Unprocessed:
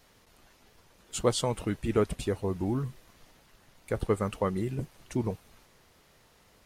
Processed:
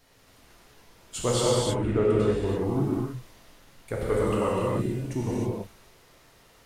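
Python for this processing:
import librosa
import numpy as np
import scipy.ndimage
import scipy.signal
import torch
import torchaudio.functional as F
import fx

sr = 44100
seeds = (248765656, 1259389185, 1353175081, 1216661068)

y = fx.lowpass(x, sr, hz=fx.line((1.42, 1300.0), (2.45, 3000.0)), slope=6, at=(1.42, 2.45), fade=0.02)
y = fx.rev_gated(y, sr, seeds[0], gate_ms=350, shape='flat', drr_db=-6.0)
y = y * librosa.db_to_amplitude(-2.0)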